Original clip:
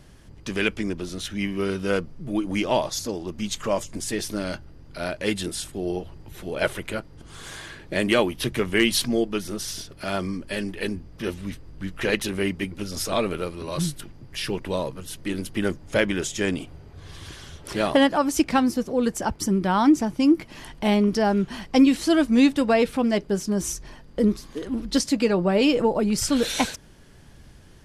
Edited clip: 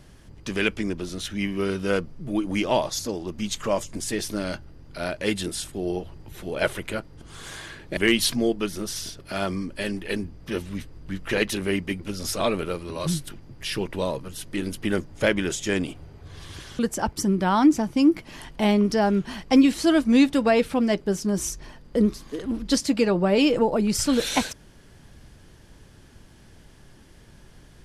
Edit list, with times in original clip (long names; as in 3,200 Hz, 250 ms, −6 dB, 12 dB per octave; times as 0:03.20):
0:07.97–0:08.69: remove
0:17.51–0:19.02: remove